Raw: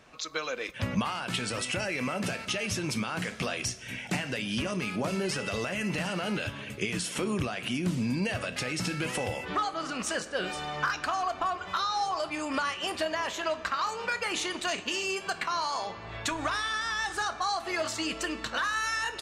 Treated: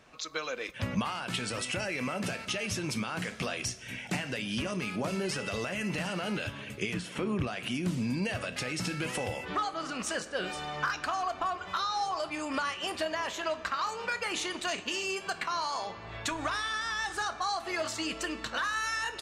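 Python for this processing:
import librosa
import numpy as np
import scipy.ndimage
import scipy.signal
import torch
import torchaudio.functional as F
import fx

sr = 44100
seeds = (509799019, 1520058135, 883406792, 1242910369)

y = fx.bass_treble(x, sr, bass_db=2, treble_db=-12, at=(6.94, 7.47))
y = F.gain(torch.from_numpy(y), -2.0).numpy()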